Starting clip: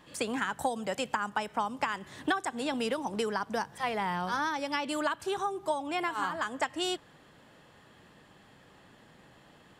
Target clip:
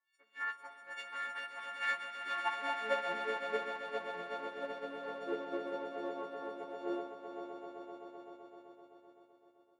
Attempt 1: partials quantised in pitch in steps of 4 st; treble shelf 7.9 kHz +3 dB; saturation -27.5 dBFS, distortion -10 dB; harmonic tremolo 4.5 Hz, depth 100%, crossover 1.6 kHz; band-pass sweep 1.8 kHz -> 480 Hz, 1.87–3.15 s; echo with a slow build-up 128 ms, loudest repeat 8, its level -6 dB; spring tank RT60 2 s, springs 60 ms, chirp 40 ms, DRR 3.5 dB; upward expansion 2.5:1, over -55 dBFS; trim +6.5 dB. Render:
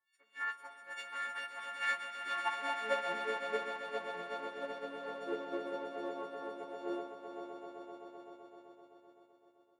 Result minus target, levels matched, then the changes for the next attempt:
8 kHz band +4.0 dB
change: treble shelf 7.9 kHz -8 dB

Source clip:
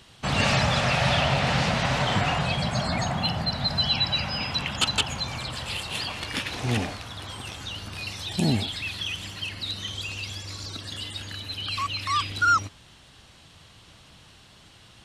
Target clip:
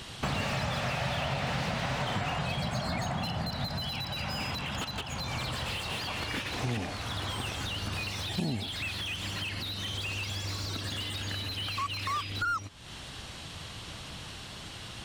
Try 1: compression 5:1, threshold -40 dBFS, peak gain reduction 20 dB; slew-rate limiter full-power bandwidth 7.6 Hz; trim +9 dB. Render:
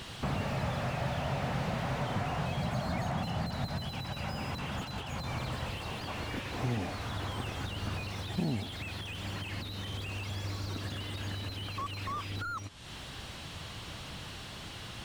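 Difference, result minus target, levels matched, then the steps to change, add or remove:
slew-rate limiter: distortion +7 dB
change: slew-rate limiter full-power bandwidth 22 Hz

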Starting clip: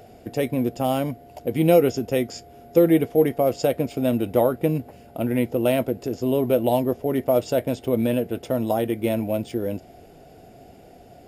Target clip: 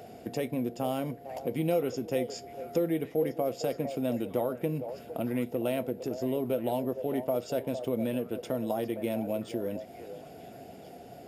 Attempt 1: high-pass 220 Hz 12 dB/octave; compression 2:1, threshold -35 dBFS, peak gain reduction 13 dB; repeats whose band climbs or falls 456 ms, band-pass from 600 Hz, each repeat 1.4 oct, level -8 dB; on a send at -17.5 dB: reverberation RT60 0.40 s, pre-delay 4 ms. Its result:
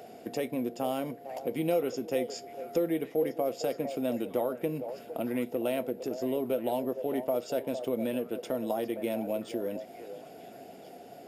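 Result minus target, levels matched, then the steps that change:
125 Hz band -6.0 dB
change: high-pass 100 Hz 12 dB/octave

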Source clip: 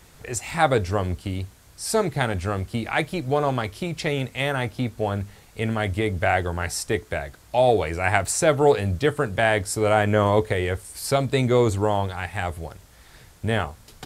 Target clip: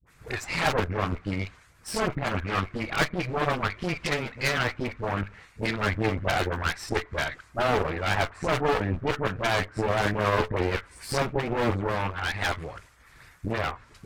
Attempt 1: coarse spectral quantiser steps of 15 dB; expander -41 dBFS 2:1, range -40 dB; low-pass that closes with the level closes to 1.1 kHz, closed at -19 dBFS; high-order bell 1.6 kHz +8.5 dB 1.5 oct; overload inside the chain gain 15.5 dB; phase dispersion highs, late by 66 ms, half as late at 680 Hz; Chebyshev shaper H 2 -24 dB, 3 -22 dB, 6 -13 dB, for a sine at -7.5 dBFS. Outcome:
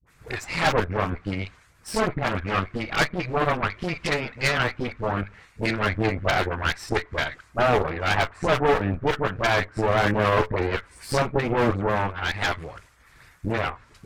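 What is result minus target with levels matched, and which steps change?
overload inside the chain: distortion -6 dB
change: overload inside the chain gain 21.5 dB

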